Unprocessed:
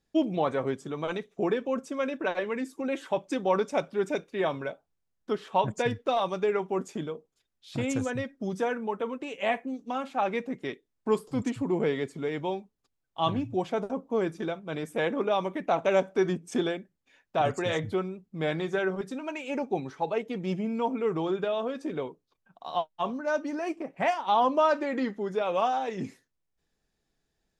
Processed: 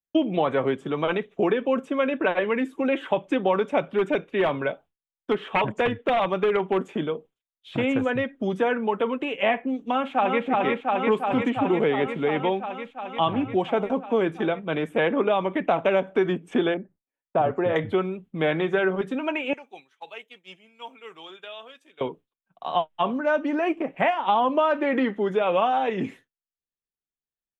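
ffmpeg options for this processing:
-filter_complex "[0:a]asettb=1/sr,asplit=3[a][b][c];[a]atrim=end=3.984[d];[b]atrim=start=3.98:end=7.82,asetpts=PTS-STARTPTS,afade=t=in:d=0.004:c=qsin,afade=t=out:st=3.836:d=0.004:c=qsin,aeval=exprs='0.0841*(abs(mod(val(0)/0.0841+3,4)-2)-1)':c=same[e];[c]atrim=start=7.816[f];[d][e]acrossfade=d=0.004:c1=hsin:c2=qsin[g];[g][f]acrossfade=d=0.004:c1=qsin:c2=hsin,asplit=2[h][i];[i]afade=t=in:st=9.81:d=0.01,afade=t=out:st=10.45:d=0.01,aecho=0:1:350|700|1050|1400|1750|2100|2450|2800|3150|3500|3850|4200:0.749894|0.599915|0.479932|0.383946|0.307157|0.245725|0.19658|0.157264|0.125811|0.100649|0.0805193|0.0644154[j];[h][j]amix=inputs=2:normalize=0,asettb=1/sr,asplit=3[k][l][m];[k]atrim=end=16.744[n];[l]atrim=start=16.74:end=17.76,asetpts=PTS-STARTPTS,afade=t=in:d=0.004:c=qsin,afade=t=out:st=1.016:d=0.004:c=qsin,lowpass=1.1k[o];[m]atrim=start=17.756[p];[n][o]acrossfade=d=0.004:c1=hsin:c2=qsin[q];[q][p]acrossfade=d=0.004:c1=qsin:c2=hsin,asettb=1/sr,asplit=3[r][s][t];[r]atrim=end=19.534[u];[s]atrim=start=19.53:end=22.01,asetpts=PTS-STARTPTS,afade=t=in:d=0.004:c=qsin,afade=t=out:st=2.476:d=0.004:c=qsin,aderivative[v];[t]atrim=start=22.006[w];[u][v]acrossfade=d=0.004:c1=hsin:c2=qsin[x];[x][w]acrossfade=d=0.004:c1=qsin:c2=hsin,agate=range=-33dB:threshold=-49dB:ratio=3:detection=peak,acrossover=split=210|2800[y][z][aa];[y]acompressor=threshold=-45dB:ratio=4[ab];[z]acompressor=threshold=-27dB:ratio=4[ac];[aa]acompressor=threshold=-58dB:ratio=4[ad];[ab][ac][ad]amix=inputs=3:normalize=0,highshelf=f=3.9k:t=q:w=3:g=-7,volume=8dB"

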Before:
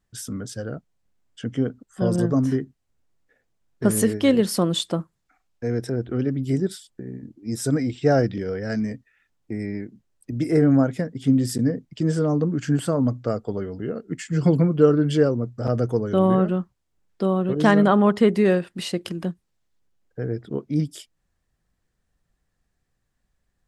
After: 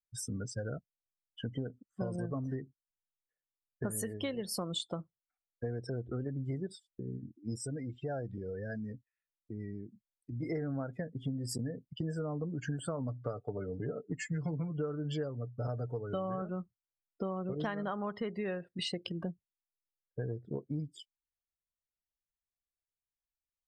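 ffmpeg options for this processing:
-filter_complex "[0:a]asplit=3[a][b][c];[a]afade=t=out:st=7.57:d=0.02[d];[b]acompressor=threshold=-36dB:ratio=2:attack=3.2:release=140:knee=1:detection=peak,afade=t=in:st=7.57:d=0.02,afade=t=out:st=10.42:d=0.02[e];[c]afade=t=in:st=10.42:d=0.02[f];[d][e][f]amix=inputs=3:normalize=0,asettb=1/sr,asplit=3[g][h][i];[g]atrim=end=13.084[j];[h]atrim=start=13.08:end=16.42,asetpts=PTS-STARTPTS,afade=t=in:d=0.004:c=qsin,afade=t=out:st=3.336:d=0.004:c=qsin,aecho=1:1:6.9:0.51,atrim=end_sample=147294[k];[i]atrim=start=16.416[l];[j][k]acrossfade=d=0.004:c1=hsin:c2=qsin[m];[m][l]acrossfade=d=0.004:c1=qsin:c2=hsin,afftdn=nr=30:nf=-35,equalizer=f=270:w=0.81:g=-8.5,acompressor=threshold=-33dB:ratio=12"

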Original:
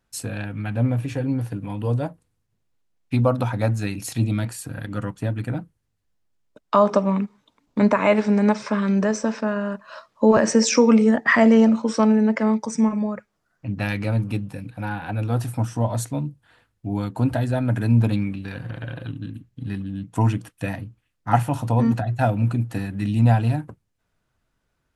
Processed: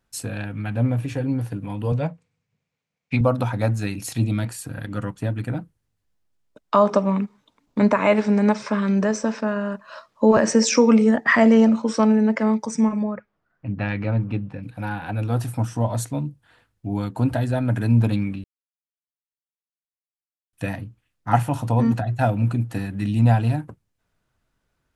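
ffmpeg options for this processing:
-filter_complex "[0:a]asettb=1/sr,asplit=3[a][b][c];[a]atrim=end=1.924[d];[b]atrim=start=1.92:end=3.21,asetpts=PTS-STARTPTS,afade=t=in:d=0.004:c=qsin,afade=t=out:st=1.286:d=0.004:c=qsin,highpass=110,equalizer=f=160:t=q:w=4:g=8,equalizer=f=340:t=q:w=4:g=-10,equalizer=f=470:t=q:w=4:g=5,equalizer=f=2.3k:t=q:w=4:g=10,lowpass=f=7.3k:w=0.5412,lowpass=f=7.3k:w=1.3066[e];[c]atrim=start=3.206[f];[d][e]acrossfade=d=0.004:c1=hsin:c2=qsin[g];[g][f]acrossfade=d=0.004:c1=qsin:c2=hsin,asettb=1/sr,asplit=3[h][i][j];[h]atrim=end=13.034[k];[i]atrim=start=13.03:end=14.63,asetpts=PTS-STARTPTS,afade=t=in:d=0.004:c=qsin,afade=t=out:st=1.596:d=0.004:c=qsin,lowpass=2.6k[l];[j]atrim=start=14.626[m];[k][l]acrossfade=d=0.004:c1=hsin:c2=qsin[n];[n][m]acrossfade=d=0.004:c1=qsin:c2=hsin,asplit=3[o][p][q];[o]atrim=end=18.44,asetpts=PTS-STARTPTS,afade=t=out:st=18.436:d=0.004:c=hsin[r];[p]atrim=start=18.44:end=20.53,asetpts=PTS-STARTPTS,volume=0[s];[q]atrim=start=20.53,asetpts=PTS-STARTPTS,afade=t=in:d=0.004:c=hsin[t];[r][s][t]concat=n=3:v=0:a=1"

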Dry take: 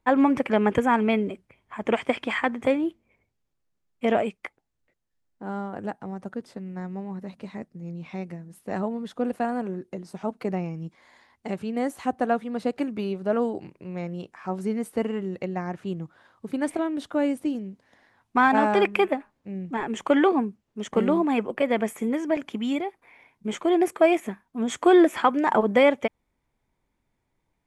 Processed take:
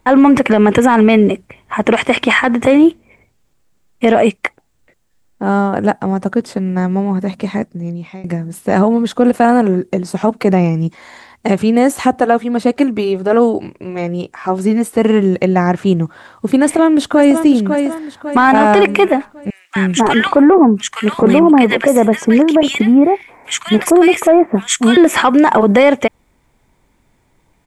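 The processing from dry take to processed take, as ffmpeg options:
-filter_complex "[0:a]asettb=1/sr,asplit=3[a][b][c];[a]atrim=end=12.204[d];[b]atrim=start=12.2:end=14.98,asetpts=PTS-STARTPTS,afade=t=in:d=0.004:c=qsin,afade=t=out:st=2.776:d=0.004:c=qsin,flanger=delay=2.2:depth=1.1:regen=-59:speed=1:shape=triangular[e];[c]atrim=start=14.976[f];[d][e]acrossfade=d=0.004:c1=hsin:c2=qsin[g];[g][f]acrossfade=d=0.004:c1=qsin:c2=hsin,asplit=2[h][i];[i]afade=t=in:st=16.58:d=0.01,afade=t=out:st=17.43:d=0.01,aecho=0:1:550|1100|1650|2200|2750:0.334965|0.150734|0.0678305|0.0305237|0.0137357[j];[h][j]amix=inputs=2:normalize=0,asettb=1/sr,asplit=3[k][l][m];[k]atrim=end=19.504[n];[l]atrim=start=19.5:end=24.97,asetpts=PTS-STARTPTS,afade=t=in:d=0.004:c=qsin,afade=t=out:st=5.466:d=0.004:c=qsin,acrossover=split=1400[o][p];[o]adelay=260[q];[q][p]amix=inputs=2:normalize=0,atrim=end_sample=241227[r];[m]atrim=start=24.966[s];[n][r]acrossfade=d=0.004:c1=hsin:c2=qsin[t];[t][s]acrossfade=d=0.004:c1=qsin:c2=hsin,asplit=2[u][v];[u]atrim=end=8.24,asetpts=PTS-STARTPTS,afade=t=out:st=7.56:d=0.68:silence=0.0707946[w];[v]atrim=start=8.24,asetpts=PTS-STARTPTS,afade=t=in:d=0.004:c=hsin:silence=0.0707946[x];[w][x]concat=n=2:v=0:a=1,acontrast=76,equalizer=f=7.7k:t=o:w=0.31:g=4.5,alimiter=level_in=12.5dB:limit=-1dB:release=50:level=0:latency=1,volume=-1dB"

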